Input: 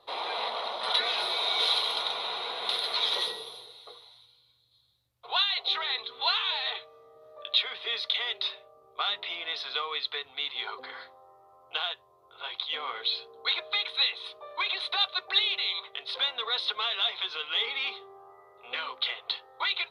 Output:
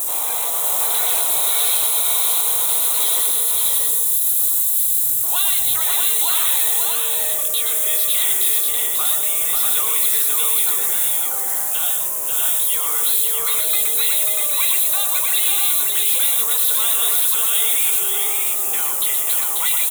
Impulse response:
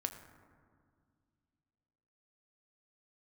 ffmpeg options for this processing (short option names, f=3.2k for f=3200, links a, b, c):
-filter_complex "[0:a]aeval=exprs='val(0)+0.5*0.0188*sgn(val(0))':c=same,aexciter=amount=10.6:drive=9.9:freq=7k,alimiter=limit=-10.5dB:level=0:latency=1:release=134,asplit=2[a][b];[b]aecho=0:1:120|539|640:0.473|0.631|0.708[c];[a][c]amix=inputs=2:normalize=0"